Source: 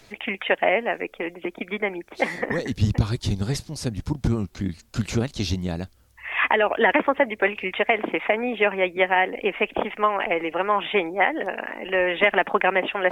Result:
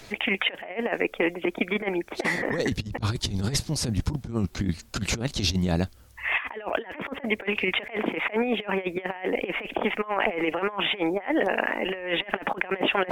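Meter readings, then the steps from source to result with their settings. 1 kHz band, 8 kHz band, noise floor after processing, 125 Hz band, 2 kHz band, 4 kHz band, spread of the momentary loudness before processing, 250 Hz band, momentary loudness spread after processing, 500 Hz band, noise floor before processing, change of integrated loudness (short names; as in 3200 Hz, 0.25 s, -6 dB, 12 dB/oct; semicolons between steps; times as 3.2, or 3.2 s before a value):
-7.0 dB, +5.0 dB, -49 dBFS, -3.0 dB, -4.5 dB, +2.0 dB, 11 LU, -0.5 dB, 5 LU, -5.0 dB, -54 dBFS, -3.5 dB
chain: negative-ratio compressor -27 dBFS, ratio -0.5; gain +1 dB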